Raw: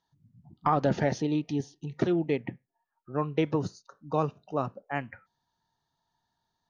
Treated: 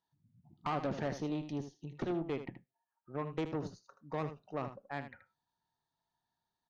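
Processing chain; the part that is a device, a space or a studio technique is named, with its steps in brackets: tube preamp driven hard (tube stage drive 24 dB, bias 0.55; low shelf 130 Hz -4 dB; high shelf 5600 Hz -6 dB); echo 78 ms -10.5 dB; gain -5 dB

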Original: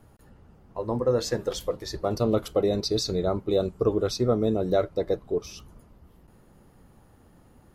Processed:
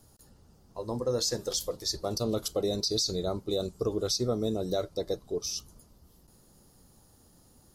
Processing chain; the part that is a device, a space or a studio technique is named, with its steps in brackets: over-bright horn tweeter (resonant high shelf 3400 Hz +13 dB, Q 1.5; limiter -13.5 dBFS, peak gain reduction 11 dB); gain -5.5 dB

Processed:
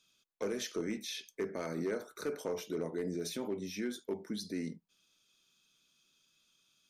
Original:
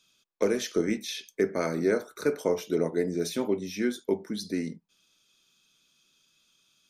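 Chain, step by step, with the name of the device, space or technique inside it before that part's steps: clipper into limiter (hard clip -18 dBFS, distortion -19 dB; limiter -23.5 dBFS, peak gain reduction 5.5 dB); gain -5 dB

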